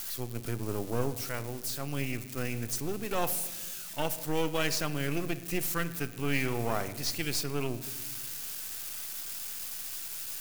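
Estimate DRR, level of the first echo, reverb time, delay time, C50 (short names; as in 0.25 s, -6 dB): 11.0 dB, none, 1.3 s, none, 13.5 dB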